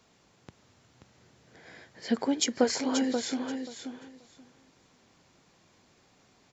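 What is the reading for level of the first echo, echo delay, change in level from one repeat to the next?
-7.0 dB, 532 ms, -15.5 dB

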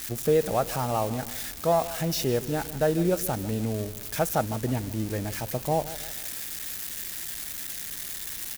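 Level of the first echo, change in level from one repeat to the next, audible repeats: -15.5 dB, -7.0 dB, 3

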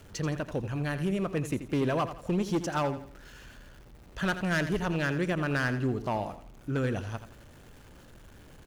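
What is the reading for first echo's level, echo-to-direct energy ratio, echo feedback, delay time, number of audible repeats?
-11.5 dB, -11.0 dB, 35%, 84 ms, 3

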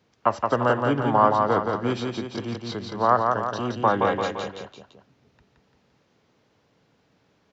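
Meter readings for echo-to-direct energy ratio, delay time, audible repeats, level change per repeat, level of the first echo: -2.5 dB, 171 ms, 3, -5.5 dB, -4.0 dB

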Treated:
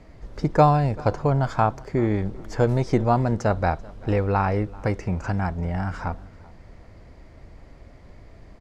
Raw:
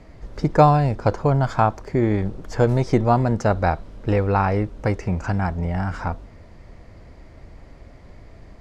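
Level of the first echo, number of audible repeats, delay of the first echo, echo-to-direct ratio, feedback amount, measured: -23.0 dB, 2, 387 ms, -22.5 dB, 27%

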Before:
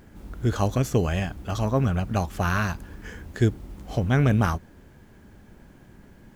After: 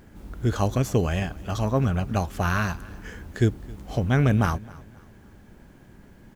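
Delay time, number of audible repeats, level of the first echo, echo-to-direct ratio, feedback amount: 266 ms, 2, -22.0 dB, -21.5 dB, 37%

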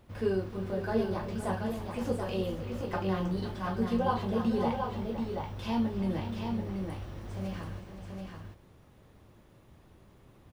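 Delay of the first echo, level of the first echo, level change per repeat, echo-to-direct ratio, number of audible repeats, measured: 312 ms, -15.0 dB, no regular repeats, -4.0 dB, 3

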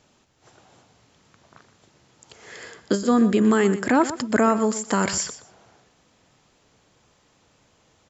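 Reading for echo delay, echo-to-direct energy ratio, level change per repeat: 122 ms, -13.5 dB, -15.0 dB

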